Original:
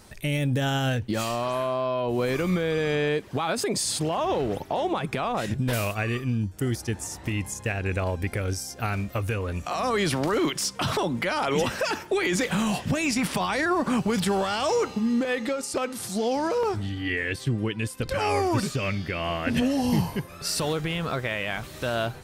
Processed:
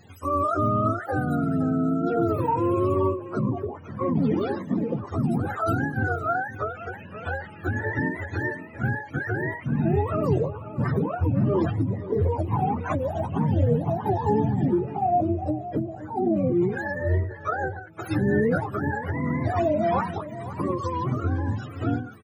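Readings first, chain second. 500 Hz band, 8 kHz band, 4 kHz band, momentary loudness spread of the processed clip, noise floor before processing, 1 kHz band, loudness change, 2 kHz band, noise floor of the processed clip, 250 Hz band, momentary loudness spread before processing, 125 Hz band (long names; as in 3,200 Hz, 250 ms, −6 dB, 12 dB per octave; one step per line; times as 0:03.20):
0.0 dB, below −20 dB, below −15 dB, 8 LU, −43 dBFS, +2.0 dB, +1.0 dB, −2.5 dB, −41 dBFS, +2.0 dB, 5 LU, +3.5 dB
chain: frequency axis turned over on the octave scale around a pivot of 410 Hz
slap from a distant wall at 89 metres, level −14 dB
every ending faded ahead of time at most 110 dB per second
level +3.5 dB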